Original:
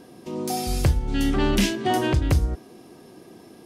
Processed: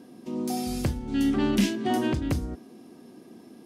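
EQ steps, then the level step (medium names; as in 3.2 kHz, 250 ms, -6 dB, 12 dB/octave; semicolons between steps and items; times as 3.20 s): high-pass 100 Hz 6 dB/octave; peaking EQ 240 Hz +10.5 dB 0.64 oct; -6.0 dB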